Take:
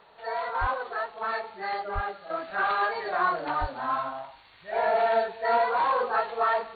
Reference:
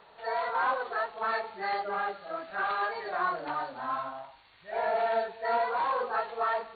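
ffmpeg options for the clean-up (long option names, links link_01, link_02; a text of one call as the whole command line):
ffmpeg -i in.wav -filter_complex "[0:a]asplit=3[link_01][link_02][link_03];[link_01]afade=type=out:start_time=0.6:duration=0.02[link_04];[link_02]highpass=frequency=140:width=0.5412,highpass=frequency=140:width=1.3066,afade=type=in:start_time=0.6:duration=0.02,afade=type=out:start_time=0.72:duration=0.02[link_05];[link_03]afade=type=in:start_time=0.72:duration=0.02[link_06];[link_04][link_05][link_06]amix=inputs=3:normalize=0,asplit=3[link_07][link_08][link_09];[link_07]afade=type=out:start_time=1.94:duration=0.02[link_10];[link_08]highpass=frequency=140:width=0.5412,highpass=frequency=140:width=1.3066,afade=type=in:start_time=1.94:duration=0.02,afade=type=out:start_time=2.06:duration=0.02[link_11];[link_09]afade=type=in:start_time=2.06:duration=0.02[link_12];[link_10][link_11][link_12]amix=inputs=3:normalize=0,asplit=3[link_13][link_14][link_15];[link_13]afade=type=out:start_time=3.6:duration=0.02[link_16];[link_14]highpass=frequency=140:width=0.5412,highpass=frequency=140:width=1.3066,afade=type=in:start_time=3.6:duration=0.02,afade=type=out:start_time=3.72:duration=0.02[link_17];[link_15]afade=type=in:start_time=3.72:duration=0.02[link_18];[link_16][link_17][link_18]amix=inputs=3:normalize=0,asetnsamples=nb_out_samples=441:pad=0,asendcmd='2.3 volume volume -4.5dB',volume=0dB" out.wav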